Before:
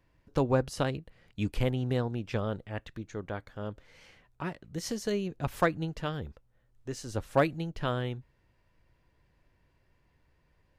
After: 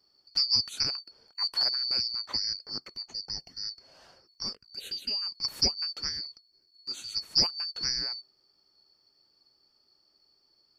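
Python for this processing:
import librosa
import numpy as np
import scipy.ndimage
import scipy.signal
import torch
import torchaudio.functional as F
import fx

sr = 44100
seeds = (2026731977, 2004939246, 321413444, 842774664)

y = fx.band_shuffle(x, sr, order='2341')
y = fx.env_phaser(y, sr, low_hz=270.0, high_hz=1500.0, full_db=-30.5, at=(4.54, 5.21), fade=0.02)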